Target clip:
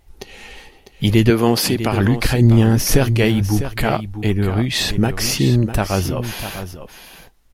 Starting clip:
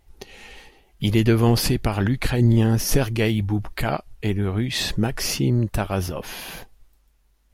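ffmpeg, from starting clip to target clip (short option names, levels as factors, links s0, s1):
-filter_complex "[0:a]asettb=1/sr,asplit=3[s0][s1][s2];[s0]atrim=end=1.304[s3];[s1]atrim=start=1.3:end=1.93,asetpts=PTS-STARTPTS,afade=t=in:d=0.004:c=qsin,afade=t=out:st=0.626:d=0.004:c=qsin,highpass=200[s4];[s2]atrim=start=1.926[s5];[s3][s4]acrossfade=d=0.004:c1=hsin:c2=qsin[s6];[s6][s5]acrossfade=d=0.004:c1=qsin:c2=hsin,aecho=1:1:650:0.282,volume=1.78"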